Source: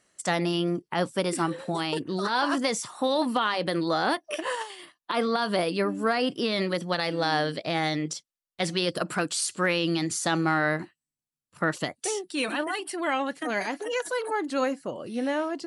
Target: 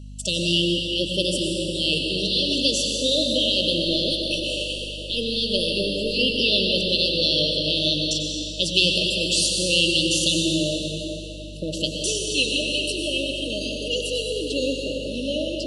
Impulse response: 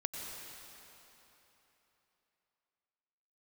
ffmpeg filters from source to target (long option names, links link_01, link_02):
-filter_complex "[0:a]asettb=1/sr,asplit=3[link_01][link_02][link_03];[link_01]atrim=end=3.854[link_04];[link_02]atrim=start=3.85:end=6.15,asetpts=PTS-STARTPTS,afade=type=in:duration=0.004:curve=qsin,afade=type=out:start_time=2.296:duration=0.004:curve=qsin,aeval=exprs='if(lt(val(0),0),0.708*val(0),val(0))':channel_layout=same[link_05];[link_03]atrim=start=6.146[link_06];[link_04][link_05]acrossfade=duration=0.004:curve1=hsin:curve2=qsin[link_07];[link_07][link_06]acrossfade=duration=0.004:curve1=qsin:curve2=hsin,equalizer=frequency=3200:width_type=o:width=2.2:gain=14[link_08];[1:a]atrim=start_sample=2205[link_09];[link_08][link_09]afir=irnorm=-1:irlink=0,aeval=exprs='val(0)+0.0141*(sin(2*PI*50*n/s)+sin(2*PI*2*50*n/s)/2+sin(2*PI*3*50*n/s)/3+sin(2*PI*4*50*n/s)/4+sin(2*PI*5*50*n/s)/5)':channel_layout=same,afftfilt=real='re*(1-between(b*sr/4096,640,2600))':imag='im*(1-between(b*sr/4096,640,2600))':win_size=4096:overlap=0.75"